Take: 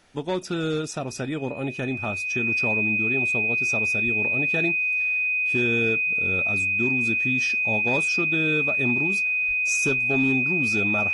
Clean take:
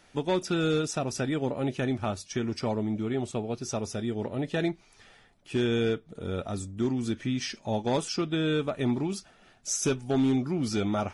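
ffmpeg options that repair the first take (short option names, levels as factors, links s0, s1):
-filter_complex "[0:a]bandreject=f=2500:w=30,asplit=3[s0][s1][s2];[s0]afade=t=out:st=4.04:d=0.02[s3];[s1]highpass=f=140:w=0.5412,highpass=f=140:w=1.3066,afade=t=in:st=4.04:d=0.02,afade=t=out:st=4.16:d=0.02[s4];[s2]afade=t=in:st=4.16:d=0.02[s5];[s3][s4][s5]amix=inputs=3:normalize=0,asplit=3[s6][s7][s8];[s6]afade=t=out:st=9.47:d=0.02[s9];[s7]highpass=f=140:w=0.5412,highpass=f=140:w=1.3066,afade=t=in:st=9.47:d=0.02,afade=t=out:st=9.59:d=0.02[s10];[s8]afade=t=in:st=9.59:d=0.02[s11];[s9][s10][s11]amix=inputs=3:normalize=0"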